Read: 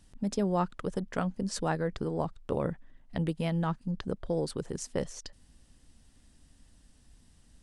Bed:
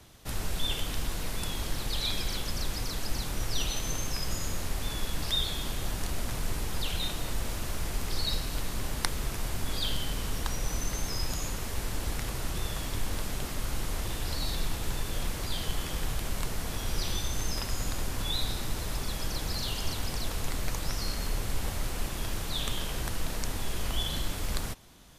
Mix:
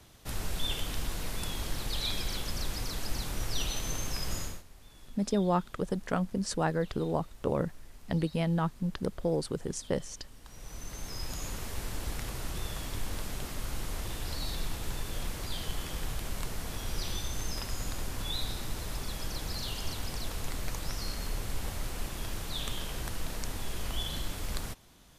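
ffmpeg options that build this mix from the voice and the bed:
-filter_complex "[0:a]adelay=4950,volume=1dB[a];[1:a]volume=16dB,afade=t=out:st=4.39:d=0.24:silence=0.105925,afade=t=in:st=10.41:d=1.13:silence=0.125893[b];[a][b]amix=inputs=2:normalize=0"

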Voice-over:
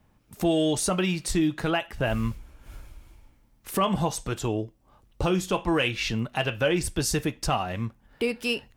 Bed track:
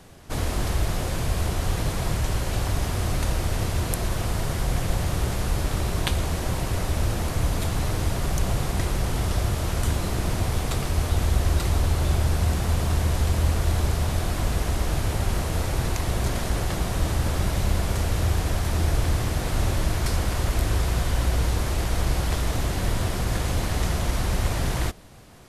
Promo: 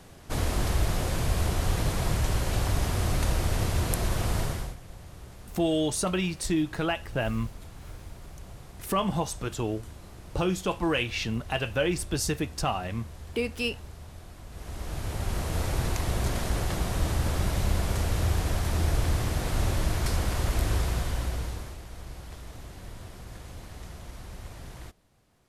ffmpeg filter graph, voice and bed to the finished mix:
-filter_complex "[0:a]adelay=5150,volume=-2.5dB[a];[1:a]volume=16dB,afade=t=out:st=4.4:d=0.36:silence=0.112202,afade=t=in:st=14.49:d=1.17:silence=0.133352,afade=t=out:st=20.74:d=1.06:silence=0.177828[b];[a][b]amix=inputs=2:normalize=0"

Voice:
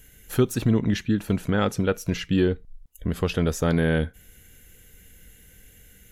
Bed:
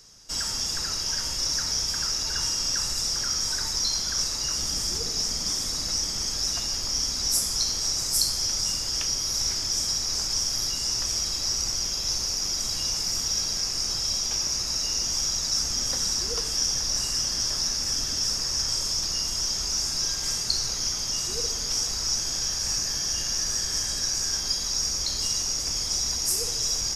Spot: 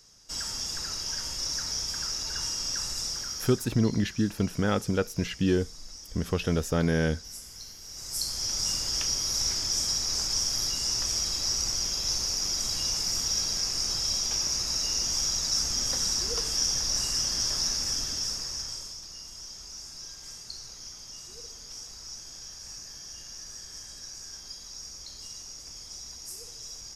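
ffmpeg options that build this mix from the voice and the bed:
-filter_complex "[0:a]adelay=3100,volume=-3.5dB[a];[1:a]volume=12dB,afade=t=out:st=3.03:d=0.68:silence=0.211349,afade=t=in:st=7.88:d=0.84:silence=0.141254,afade=t=out:st=17.72:d=1.27:silence=0.199526[b];[a][b]amix=inputs=2:normalize=0"

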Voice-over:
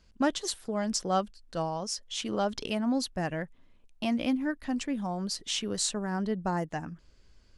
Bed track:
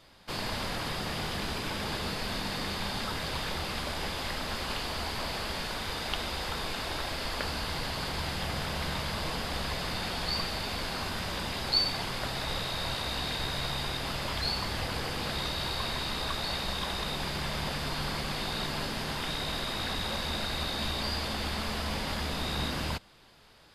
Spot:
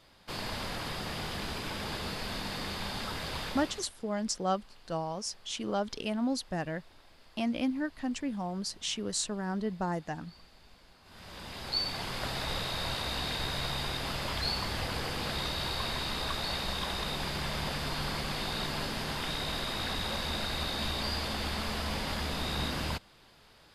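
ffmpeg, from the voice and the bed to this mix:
-filter_complex "[0:a]adelay=3350,volume=-2.5dB[a];[1:a]volume=22dB,afade=t=out:st=3.43:d=0.47:silence=0.0707946,afade=t=in:st=11.03:d=1.27:silence=0.0562341[b];[a][b]amix=inputs=2:normalize=0"

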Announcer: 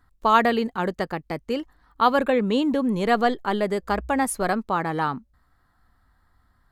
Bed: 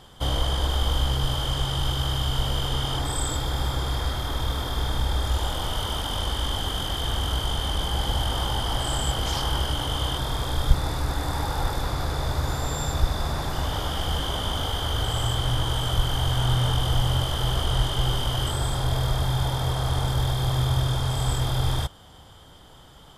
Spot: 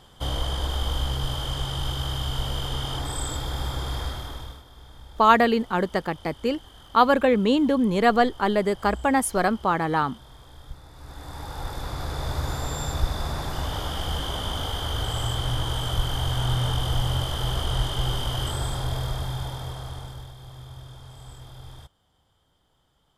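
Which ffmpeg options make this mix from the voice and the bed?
-filter_complex "[0:a]adelay=4950,volume=1.5dB[a];[1:a]volume=16dB,afade=t=out:st=4.01:d=0.62:silence=0.125893,afade=t=in:st=10.92:d=1.45:silence=0.112202,afade=t=out:st=18.58:d=1.75:silence=0.141254[b];[a][b]amix=inputs=2:normalize=0"

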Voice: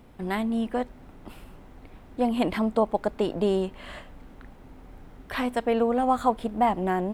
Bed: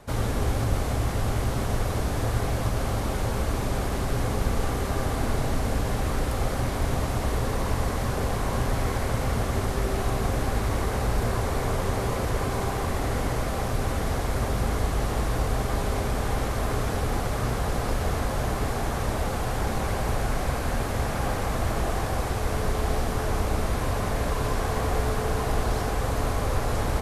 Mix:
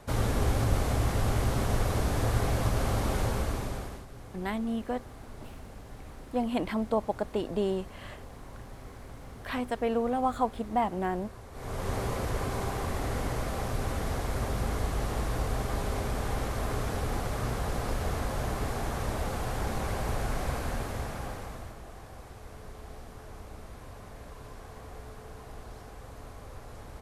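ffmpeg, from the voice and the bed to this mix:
-filter_complex "[0:a]adelay=4150,volume=-5dB[a];[1:a]volume=14dB,afade=t=out:st=3.2:d=0.86:silence=0.112202,afade=t=in:st=11.52:d=0.41:silence=0.16788,afade=t=out:st=20.55:d=1.22:silence=0.188365[b];[a][b]amix=inputs=2:normalize=0"

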